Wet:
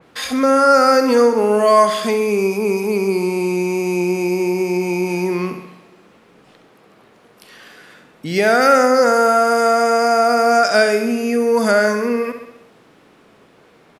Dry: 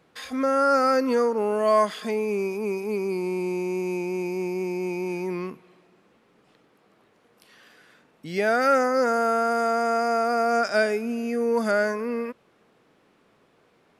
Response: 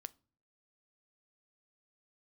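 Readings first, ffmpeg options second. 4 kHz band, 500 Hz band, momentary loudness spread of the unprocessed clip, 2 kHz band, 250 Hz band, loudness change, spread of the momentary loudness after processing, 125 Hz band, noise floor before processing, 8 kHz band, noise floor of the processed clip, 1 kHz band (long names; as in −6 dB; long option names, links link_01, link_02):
+12.0 dB, +8.5 dB, 9 LU, +8.5 dB, +8.5 dB, +8.5 dB, 9 LU, +10.0 dB, −63 dBFS, +13.0 dB, −51 dBFS, +8.5 dB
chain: -filter_complex "[0:a]aecho=1:1:67|134|201|268|335|402|469:0.316|0.183|0.106|0.0617|0.0358|0.0208|0.012,asplit=2[link_01][link_02];[link_02]acompressor=threshold=-31dB:ratio=6,volume=-2dB[link_03];[link_01][link_03]amix=inputs=2:normalize=0,adynamicequalizer=threshold=0.0112:dfrequency=3400:dqfactor=0.7:tfrequency=3400:tqfactor=0.7:attack=5:release=100:ratio=0.375:range=2.5:mode=boostabove:tftype=highshelf,volume=6dB"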